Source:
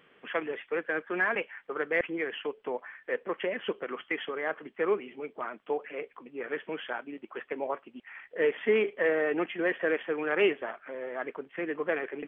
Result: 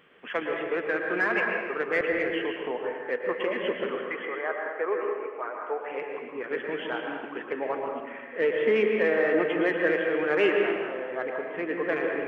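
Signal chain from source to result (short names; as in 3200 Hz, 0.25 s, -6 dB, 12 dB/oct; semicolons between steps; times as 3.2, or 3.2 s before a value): in parallel at -11.5 dB: soft clip -27.5 dBFS, distortion -9 dB; 3.99–5.81 on the sum: Butterworth band-pass 920 Hz, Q 0.59; reverb RT60 1.4 s, pre-delay 0.107 s, DRR 1 dB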